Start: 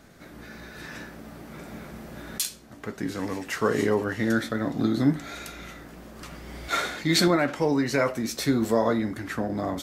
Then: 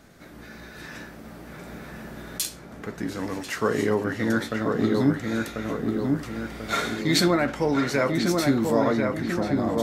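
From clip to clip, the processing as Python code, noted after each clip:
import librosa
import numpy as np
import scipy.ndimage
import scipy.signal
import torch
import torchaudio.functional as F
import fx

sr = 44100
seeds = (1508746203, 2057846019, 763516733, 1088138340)

y = fx.echo_filtered(x, sr, ms=1041, feedback_pct=54, hz=1900.0, wet_db=-3)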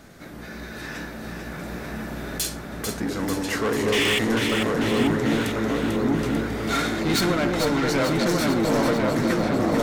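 y = fx.spec_paint(x, sr, seeds[0], shape='noise', start_s=3.92, length_s=0.27, low_hz=1700.0, high_hz=3600.0, level_db=-21.0)
y = 10.0 ** (-25.0 / 20.0) * np.tanh(y / 10.0 ** (-25.0 / 20.0))
y = fx.echo_alternate(y, sr, ms=222, hz=960.0, feedback_pct=79, wet_db=-3.5)
y = y * librosa.db_to_amplitude(5.0)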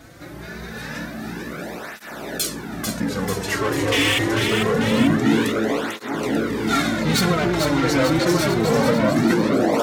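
y = fx.flanger_cancel(x, sr, hz=0.25, depth_ms=5.1)
y = y * librosa.db_to_amplitude(6.0)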